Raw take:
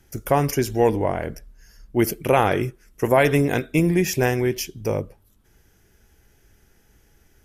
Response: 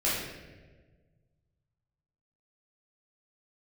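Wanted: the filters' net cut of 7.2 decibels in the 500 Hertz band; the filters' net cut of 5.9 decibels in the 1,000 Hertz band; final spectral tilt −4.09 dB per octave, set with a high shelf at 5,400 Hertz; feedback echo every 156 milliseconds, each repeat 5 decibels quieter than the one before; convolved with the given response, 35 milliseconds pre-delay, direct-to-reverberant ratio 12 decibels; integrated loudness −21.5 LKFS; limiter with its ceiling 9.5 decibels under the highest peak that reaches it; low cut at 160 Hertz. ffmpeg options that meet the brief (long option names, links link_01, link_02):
-filter_complex "[0:a]highpass=160,equalizer=frequency=500:width_type=o:gain=-8.5,equalizer=frequency=1000:width_type=o:gain=-4.5,highshelf=frequency=5400:gain=7.5,alimiter=limit=-16.5dB:level=0:latency=1,aecho=1:1:156|312|468|624|780|936|1092:0.562|0.315|0.176|0.0988|0.0553|0.031|0.0173,asplit=2[link_01][link_02];[1:a]atrim=start_sample=2205,adelay=35[link_03];[link_02][link_03]afir=irnorm=-1:irlink=0,volume=-22.5dB[link_04];[link_01][link_04]amix=inputs=2:normalize=0,volume=5.5dB"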